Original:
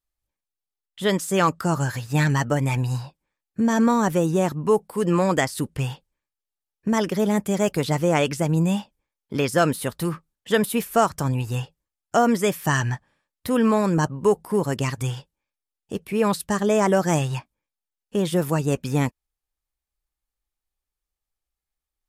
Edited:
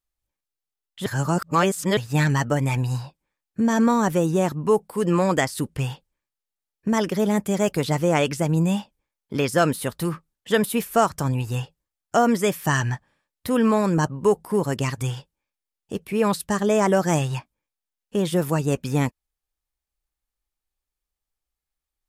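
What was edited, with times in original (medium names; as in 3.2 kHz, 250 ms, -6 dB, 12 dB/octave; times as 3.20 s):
1.06–1.97 s: reverse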